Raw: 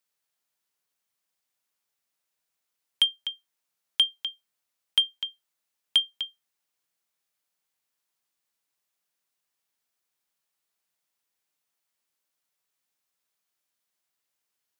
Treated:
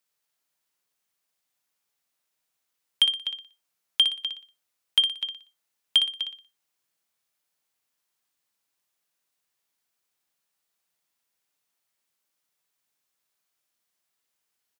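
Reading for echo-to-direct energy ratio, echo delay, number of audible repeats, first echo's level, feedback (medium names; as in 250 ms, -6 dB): -7.0 dB, 60 ms, 4, -7.5 dB, 35%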